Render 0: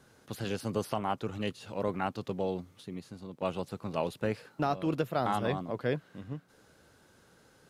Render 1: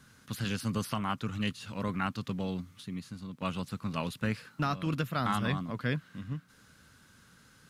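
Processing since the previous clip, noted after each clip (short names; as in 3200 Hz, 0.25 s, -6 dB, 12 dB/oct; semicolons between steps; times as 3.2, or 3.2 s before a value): band shelf 530 Hz -11.5 dB; gain +4 dB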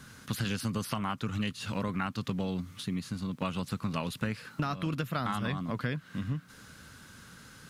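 compressor, threshold -37 dBFS, peak gain reduction 11.5 dB; gain +8 dB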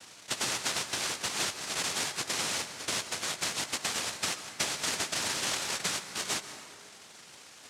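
noise vocoder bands 1; plate-style reverb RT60 2.1 s, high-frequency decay 0.5×, pre-delay 0.115 s, DRR 10 dB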